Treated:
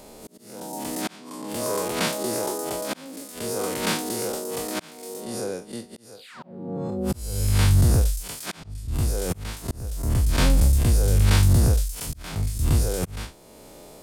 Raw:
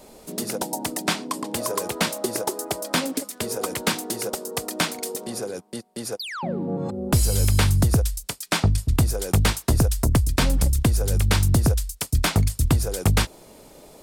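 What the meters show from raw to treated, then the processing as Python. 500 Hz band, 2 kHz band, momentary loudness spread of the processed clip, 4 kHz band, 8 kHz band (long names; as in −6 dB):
−1.0 dB, −4.5 dB, 19 LU, −4.0 dB, −3.0 dB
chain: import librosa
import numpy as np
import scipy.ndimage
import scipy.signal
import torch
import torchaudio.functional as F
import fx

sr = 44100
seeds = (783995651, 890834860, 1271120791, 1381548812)

y = fx.spec_blur(x, sr, span_ms=96.0)
y = fx.auto_swell(y, sr, attack_ms=638.0)
y = F.gain(torch.from_numpy(y), 3.5).numpy()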